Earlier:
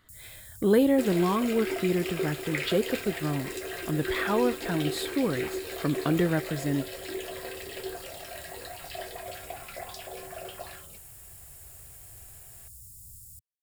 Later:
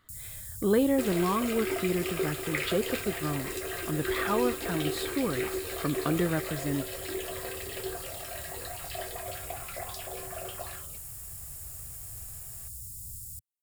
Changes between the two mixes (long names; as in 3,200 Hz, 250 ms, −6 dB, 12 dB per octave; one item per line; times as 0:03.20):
speech −3.0 dB
first sound +6.0 dB
master: add parametric band 1,200 Hz +6.5 dB 0.22 octaves